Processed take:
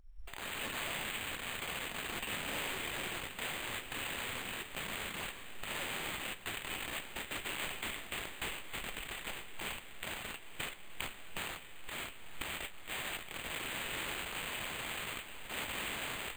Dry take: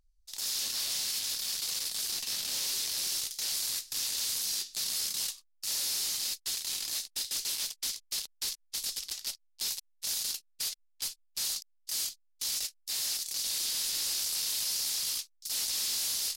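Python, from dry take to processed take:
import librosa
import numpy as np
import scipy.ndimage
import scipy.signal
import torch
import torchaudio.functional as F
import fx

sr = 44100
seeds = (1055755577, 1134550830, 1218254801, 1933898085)

y = fx.recorder_agc(x, sr, target_db=-30.0, rise_db_per_s=61.0, max_gain_db=30)
y = fx.echo_diffused(y, sr, ms=1022, feedback_pct=48, wet_db=-10.5)
y = np.repeat(scipy.signal.resample_poly(y, 1, 8), 8)[:len(y)]
y = fx.sustainer(y, sr, db_per_s=47.0, at=(7.54, 9.77))
y = y * librosa.db_to_amplitude(10.0)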